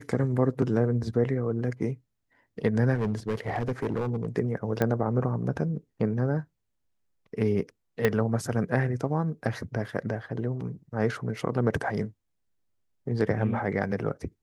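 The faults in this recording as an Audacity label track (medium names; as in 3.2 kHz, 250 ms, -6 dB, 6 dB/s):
2.950000	4.270000	clipped -23.5 dBFS
4.820000	4.820000	pop -13 dBFS
8.050000	8.050000	pop -10 dBFS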